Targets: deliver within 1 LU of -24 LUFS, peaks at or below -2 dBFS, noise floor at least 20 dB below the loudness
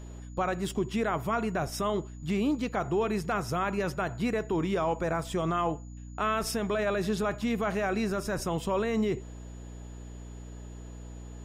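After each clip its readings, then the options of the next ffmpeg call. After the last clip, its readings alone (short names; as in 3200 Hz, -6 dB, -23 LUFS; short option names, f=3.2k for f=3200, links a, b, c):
hum 60 Hz; harmonics up to 300 Hz; hum level -40 dBFS; steady tone 6900 Hz; tone level -59 dBFS; loudness -30.5 LUFS; peak -18.5 dBFS; loudness target -24.0 LUFS
-> -af "bandreject=f=60:t=h:w=6,bandreject=f=120:t=h:w=6,bandreject=f=180:t=h:w=6,bandreject=f=240:t=h:w=6,bandreject=f=300:t=h:w=6"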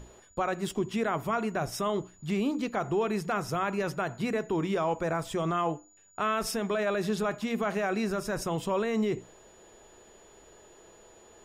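hum none; steady tone 6900 Hz; tone level -59 dBFS
-> -af "bandreject=f=6.9k:w=30"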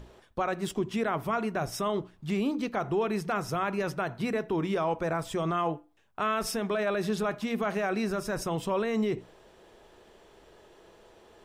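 steady tone none; loudness -30.5 LUFS; peak -18.5 dBFS; loudness target -24.0 LUFS
-> -af "volume=6.5dB"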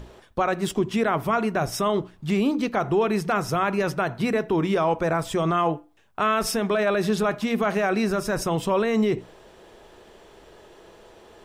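loudness -24.0 LUFS; peak -12.0 dBFS; noise floor -53 dBFS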